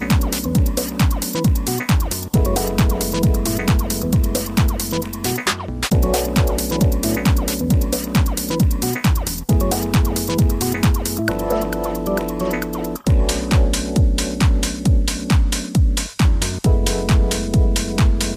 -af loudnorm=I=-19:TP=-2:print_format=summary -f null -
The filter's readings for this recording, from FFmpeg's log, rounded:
Input Integrated:    -18.8 LUFS
Input True Peak:      -5.0 dBTP
Input LRA:             1.2 LU
Input Threshold:     -28.8 LUFS